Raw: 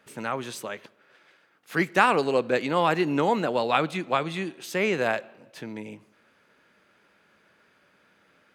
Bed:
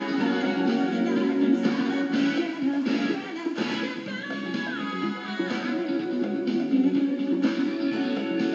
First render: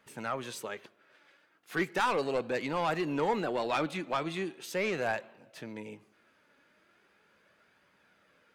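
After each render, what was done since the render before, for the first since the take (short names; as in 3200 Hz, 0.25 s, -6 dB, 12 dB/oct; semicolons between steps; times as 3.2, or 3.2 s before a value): soft clip -18 dBFS, distortion -11 dB; flange 0.38 Hz, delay 0.9 ms, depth 2.7 ms, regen +62%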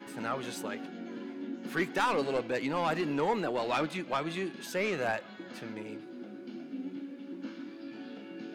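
add bed -17.5 dB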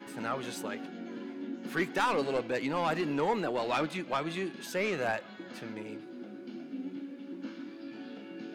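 nothing audible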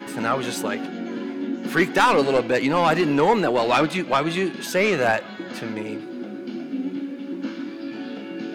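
gain +11.5 dB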